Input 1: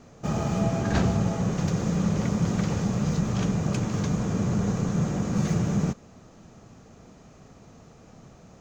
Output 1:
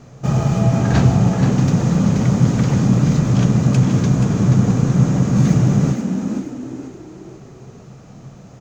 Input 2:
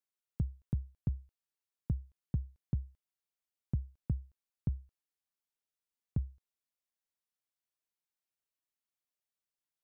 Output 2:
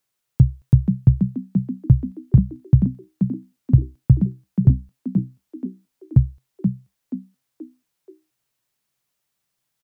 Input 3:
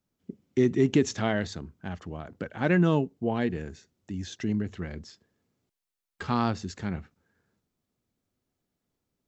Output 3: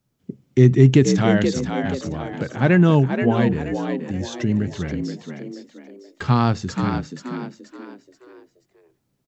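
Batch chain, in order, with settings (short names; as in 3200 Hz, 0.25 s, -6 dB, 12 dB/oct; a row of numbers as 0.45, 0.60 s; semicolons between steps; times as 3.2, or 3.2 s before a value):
bell 130 Hz +13.5 dB 0.28 oct; on a send: frequency-shifting echo 0.479 s, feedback 37%, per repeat +62 Hz, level -7 dB; on the sum: normalise peaks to -2 dBFS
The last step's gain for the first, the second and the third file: +5.5, +15.0, +6.5 dB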